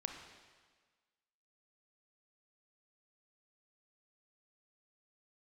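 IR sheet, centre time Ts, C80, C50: 40 ms, 6.5 dB, 5.0 dB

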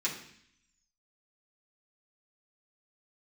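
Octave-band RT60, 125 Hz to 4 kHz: 0.90 s, 0.85 s, 0.60 s, 0.65 s, 0.80 s, 0.85 s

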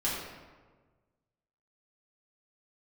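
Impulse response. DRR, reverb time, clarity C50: -8.5 dB, 1.4 s, 0.5 dB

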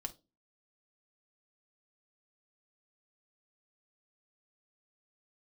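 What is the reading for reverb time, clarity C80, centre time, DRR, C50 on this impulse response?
no single decay rate, 27.5 dB, 5 ms, 3.0 dB, 18.0 dB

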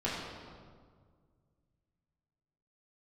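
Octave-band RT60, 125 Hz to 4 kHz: 2.9 s, 2.3 s, 1.9 s, 1.7 s, 1.3 s, 1.2 s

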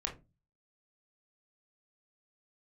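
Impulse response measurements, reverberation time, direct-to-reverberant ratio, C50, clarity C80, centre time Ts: 0.25 s, 0.0 dB, 11.5 dB, 19.5 dB, 17 ms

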